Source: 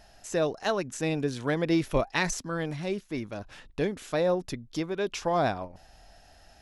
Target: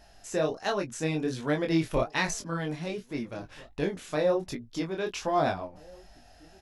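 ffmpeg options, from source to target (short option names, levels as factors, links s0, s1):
-filter_complex "[0:a]asplit=2[s0][s1];[s1]adelay=17,volume=0.251[s2];[s0][s2]amix=inputs=2:normalize=0,flanger=delay=20:depth=6.3:speed=1.3,asplit=2[s3][s4];[s4]adelay=1633,volume=0.0631,highshelf=f=4000:g=-36.7[s5];[s3][s5]amix=inputs=2:normalize=0,volume=1.26"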